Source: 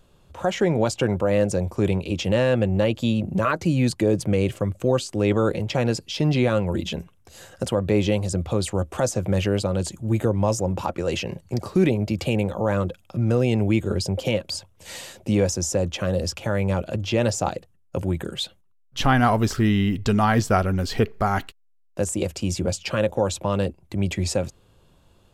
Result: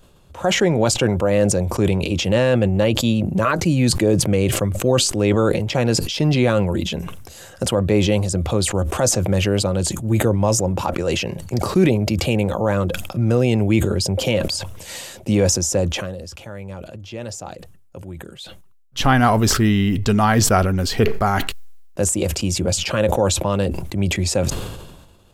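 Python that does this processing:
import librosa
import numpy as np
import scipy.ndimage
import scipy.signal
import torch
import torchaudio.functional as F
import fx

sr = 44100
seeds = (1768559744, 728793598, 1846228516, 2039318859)

y = fx.edit(x, sr, fx.fade_down_up(start_s=15.85, length_s=3.14, db=-13.5, fade_s=0.29), tone=tone)
y = fx.high_shelf(y, sr, hz=6800.0, db=4.0)
y = fx.sustainer(y, sr, db_per_s=45.0)
y = y * librosa.db_to_amplitude(3.0)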